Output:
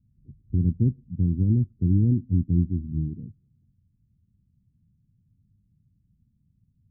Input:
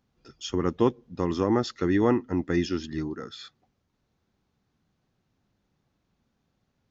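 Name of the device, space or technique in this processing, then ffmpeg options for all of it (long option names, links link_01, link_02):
the neighbour's flat through the wall: -af "lowpass=frequency=190:width=0.5412,lowpass=frequency=190:width=1.3066,equalizer=frequency=100:width_type=o:width=0.7:gain=5.5,volume=9dB"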